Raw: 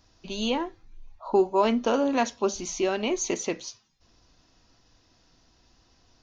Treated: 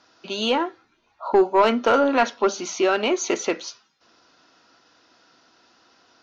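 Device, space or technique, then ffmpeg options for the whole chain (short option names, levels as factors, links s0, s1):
intercom: -filter_complex "[0:a]highpass=310,lowpass=4900,equalizer=f=1400:t=o:w=0.24:g=10.5,asoftclip=type=tanh:threshold=0.168,asettb=1/sr,asplit=3[s0][s1][s2];[s0]atrim=end=1.994[s3];[s1]atrim=start=1.99:end=2.51,asetpts=PTS-STARTPTS,afade=t=in:d=0.004:c=qsin,afade=t=out:st=0.516:d=0.004:c=qsin,lowpass=5300[s4];[s2]atrim=start=2.506[s5];[s3][s4]acrossfade=d=0.004:c1=hsin:c2=qsin[s6];[s6][s5]acrossfade=d=0.004:c1=qsin:c2=hsin,volume=2.37"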